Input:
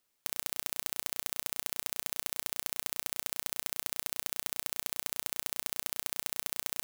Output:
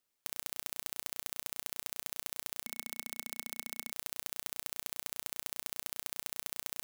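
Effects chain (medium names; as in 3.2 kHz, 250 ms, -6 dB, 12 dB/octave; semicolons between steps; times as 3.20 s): 2.64–3.92 s: small resonant body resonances 230/2200 Hz, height 8 dB; trim -5 dB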